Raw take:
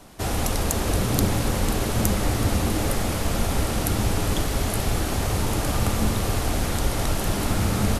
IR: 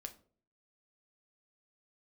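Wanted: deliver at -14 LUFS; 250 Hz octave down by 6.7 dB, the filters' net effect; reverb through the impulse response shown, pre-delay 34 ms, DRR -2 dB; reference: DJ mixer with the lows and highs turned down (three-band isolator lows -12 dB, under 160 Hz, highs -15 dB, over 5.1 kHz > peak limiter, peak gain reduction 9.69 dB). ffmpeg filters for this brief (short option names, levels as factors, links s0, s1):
-filter_complex "[0:a]equalizer=f=250:t=o:g=-7,asplit=2[s0][s1];[1:a]atrim=start_sample=2205,adelay=34[s2];[s1][s2]afir=irnorm=-1:irlink=0,volume=2[s3];[s0][s3]amix=inputs=2:normalize=0,acrossover=split=160 5100:gain=0.251 1 0.178[s4][s5][s6];[s4][s5][s6]amix=inputs=3:normalize=0,volume=5.96,alimiter=limit=0.596:level=0:latency=1"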